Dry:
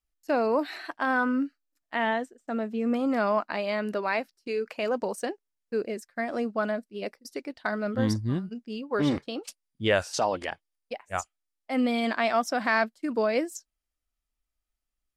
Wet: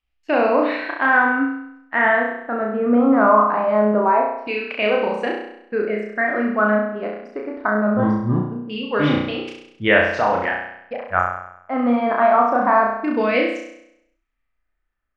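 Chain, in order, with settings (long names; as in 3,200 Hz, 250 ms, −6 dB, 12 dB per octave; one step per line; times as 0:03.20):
auto-filter low-pass saw down 0.23 Hz 900–2,900 Hz
flutter between parallel walls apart 5.7 metres, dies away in 0.77 s
level +4.5 dB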